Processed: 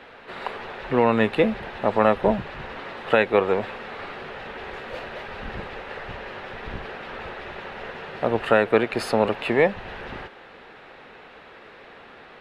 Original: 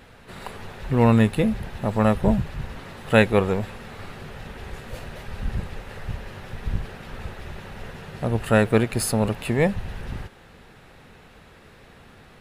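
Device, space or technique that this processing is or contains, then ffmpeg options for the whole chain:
DJ mixer with the lows and highs turned down: -filter_complex "[0:a]acrossover=split=290 4100:gain=0.126 1 0.0708[a][b][c];[a][b][c]amix=inputs=3:normalize=0,alimiter=limit=-12.5dB:level=0:latency=1:release=278,volume=6.5dB"

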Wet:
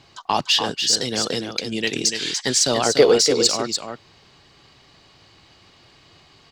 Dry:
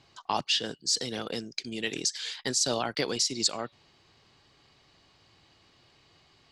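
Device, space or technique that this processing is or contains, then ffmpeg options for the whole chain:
parallel distortion: -filter_complex "[0:a]asettb=1/sr,asplit=3[a][b][c];[a]atrim=end=2.864[d];[b]atrim=start=2.86:end=3.35,asetpts=PTS-STARTPTS,afade=t=in:d=0.004:c=qsin,afade=t=out:st=0.486:d=0.004:c=qsin,equalizer=f=450:w=2.2:g=14[e];[c]atrim=start=3.346[f];[d][e]acrossfade=d=0.004:c1=hsin:c2=qsin[g];[g][f]acrossfade=d=0.004:c1=qsin:c2=hsin,asplit=2[h][i];[i]asoftclip=type=hard:threshold=-24.5dB,volume=-10dB[j];[h][j]amix=inputs=2:normalize=0,aecho=1:1:291:0.473,volume=6.5dB"

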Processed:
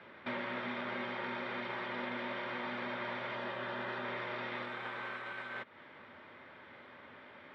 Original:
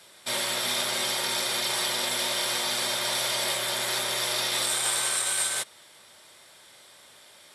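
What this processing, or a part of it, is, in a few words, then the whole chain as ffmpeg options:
bass amplifier: -filter_complex "[0:a]acompressor=threshold=-36dB:ratio=5,highpass=79,equalizer=f=83:t=q:w=4:g=6,equalizer=f=250:t=q:w=4:g=9,equalizer=f=700:t=q:w=4:g=-5,lowpass=f=2.2k:w=0.5412,lowpass=f=2.2k:w=1.3066,asettb=1/sr,asplit=3[a][b][c];[a]atrim=end=3.354[d];[b]atrim=start=3.35:end=4.05,asetpts=PTS-STARTPTS,afade=t=in:d=0.004:c=qsin,afade=t=out:st=0.696:d=0.004:c=qsin,bandreject=f=2.2k:w=7.7[e];[c]atrim=start=4.046[f];[d][e]acrossfade=d=0.004:c1=hsin:c2=qsin[g];[g][f]acrossfade=d=0.004:c1=qsin:c2=hsin,volume=4dB"

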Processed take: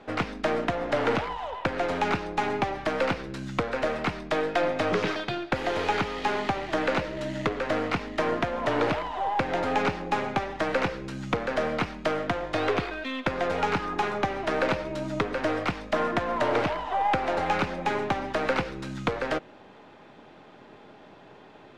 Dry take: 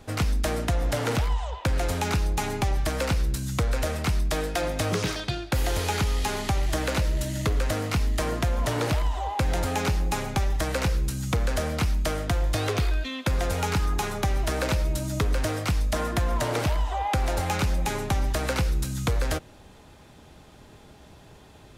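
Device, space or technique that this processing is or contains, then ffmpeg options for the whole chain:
crystal radio: -af "highpass=240,lowpass=2.6k,aeval=exprs='if(lt(val(0),0),0.708*val(0),val(0))':c=same,volume=5dB"

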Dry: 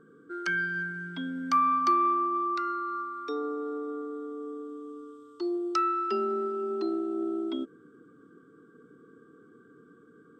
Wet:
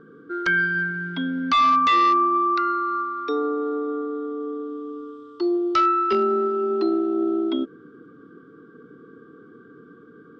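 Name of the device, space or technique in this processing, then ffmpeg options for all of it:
synthesiser wavefolder: -af "aeval=exprs='0.0841*(abs(mod(val(0)/0.0841+3,4)-2)-1)':c=same,lowpass=f=4.9k:w=0.5412,lowpass=f=4.9k:w=1.3066,volume=8.5dB"

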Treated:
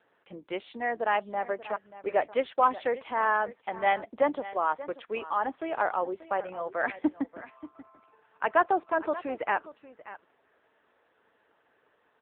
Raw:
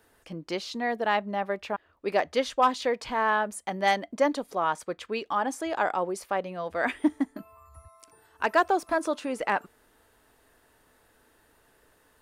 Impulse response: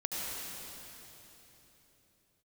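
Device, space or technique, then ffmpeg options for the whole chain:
satellite phone: -filter_complex "[0:a]asettb=1/sr,asplit=3[a][b][c];[a]atrim=end=2.614[d];[b]atrim=start=2.61:end=4.67,asetpts=PTS-STARTPTS,afade=t=in:d=0.004:c=qsin,afade=t=out:st=2.056:d=0.004:c=qsin,highpass=49[e];[c]atrim=start=4.666[f];[d][e]acrossfade=d=0.004:c1=hsin:c2=qsin[g];[g][f]acrossfade=d=0.004:c1=qsin:c2=hsin,highpass=320,lowpass=3k,aecho=1:1:584:0.158" -ar 8000 -c:a libopencore_amrnb -b:a 6700

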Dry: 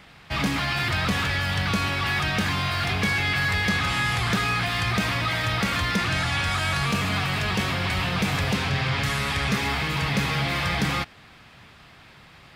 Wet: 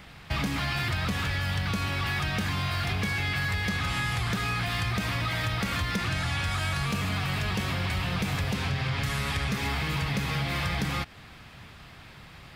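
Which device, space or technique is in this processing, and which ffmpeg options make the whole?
ASMR close-microphone chain: -af "lowshelf=f=130:g=7.5,acompressor=threshold=-26dB:ratio=6,highshelf=f=11k:g=6"

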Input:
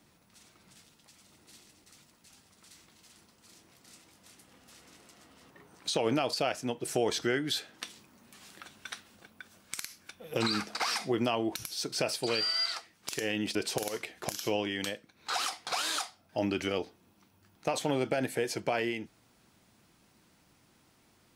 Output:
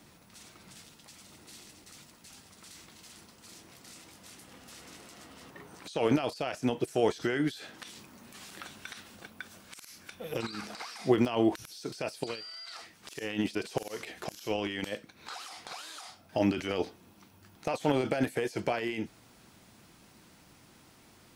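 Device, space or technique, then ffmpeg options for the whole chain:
de-esser from a sidechain: -filter_complex "[0:a]asplit=2[a][b];[b]highpass=5.2k,apad=whole_len=941798[c];[a][c]sidechaincompress=threshold=-55dB:ratio=12:attack=2.3:release=29,volume=7dB"

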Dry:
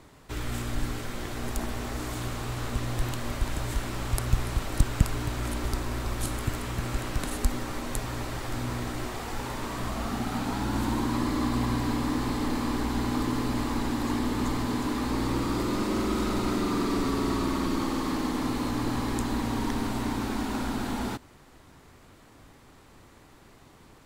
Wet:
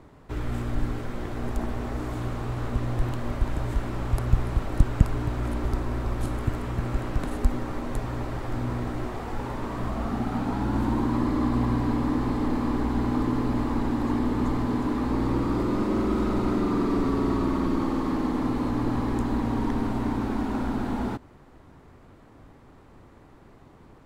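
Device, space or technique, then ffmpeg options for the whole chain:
through cloth: -af "highshelf=f=2.3k:g=-16,volume=3.5dB"

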